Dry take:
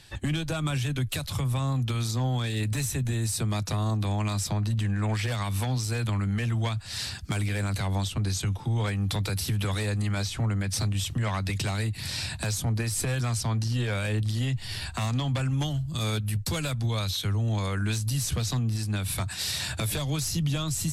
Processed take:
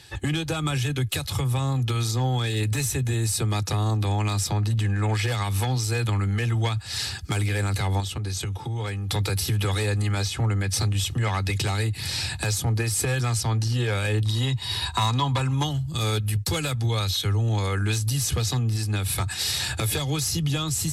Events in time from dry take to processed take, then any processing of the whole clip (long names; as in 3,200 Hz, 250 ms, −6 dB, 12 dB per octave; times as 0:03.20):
0:08.00–0:09.11: downward compressor, threshold −29 dBFS
0:14.25–0:15.71: hollow resonant body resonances 1,000/3,800 Hz, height 17 dB
whole clip: high-pass filter 62 Hz; comb filter 2.4 ms, depth 43%; level +3.5 dB